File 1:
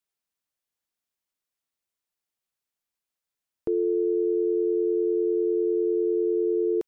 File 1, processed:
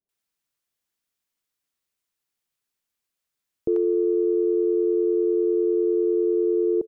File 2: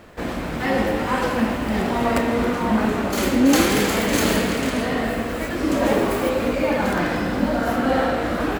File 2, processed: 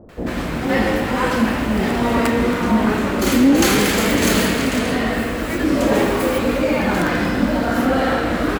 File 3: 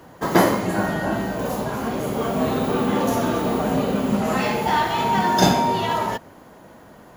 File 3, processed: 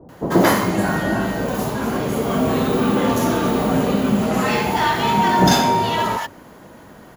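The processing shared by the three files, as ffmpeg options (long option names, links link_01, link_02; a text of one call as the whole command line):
ffmpeg -i in.wav -filter_complex "[0:a]acrossover=split=720[link_01][link_02];[link_02]adelay=90[link_03];[link_01][link_03]amix=inputs=2:normalize=0,acontrast=58,volume=-2dB" out.wav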